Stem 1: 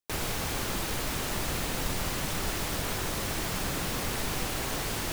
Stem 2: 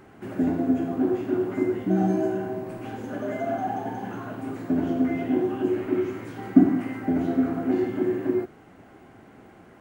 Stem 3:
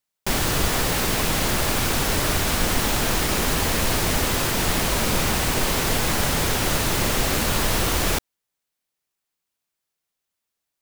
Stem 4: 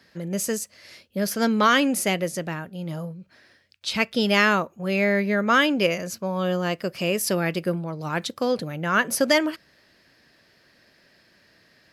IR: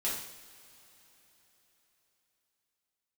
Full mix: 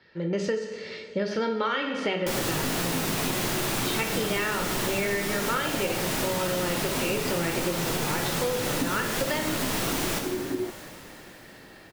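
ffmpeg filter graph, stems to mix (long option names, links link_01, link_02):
-filter_complex "[1:a]adelay=2250,volume=-3.5dB[link_01];[2:a]lowshelf=frequency=100:width_type=q:width=1.5:gain=-8,adelay=2000,volume=-1.5dB,asplit=2[link_02][link_03];[link_03]volume=-4dB[link_04];[3:a]lowpass=frequency=4200:width=0.5412,lowpass=frequency=4200:width=1.3066,aecho=1:1:2.2:0.47,dynaudnorm=framelen=160:gausssize=3:maxgain=7.5dB,volume=-6dB,asplit=2[link_05][link_06];[link_06]volume=-3dB[link_07];[4:a]atrim=start_sample=2205[link_08];[link_04][link_07]amix=inputs=2:normalize=0[link_09];[link_09][link_08]afir=irnorm=-1:irlink=0[link_10];[link_01][link_02][link_05][link_10]amix=inputs=4:normalize=0,acompressor=threshold=-24dB:ratio=10"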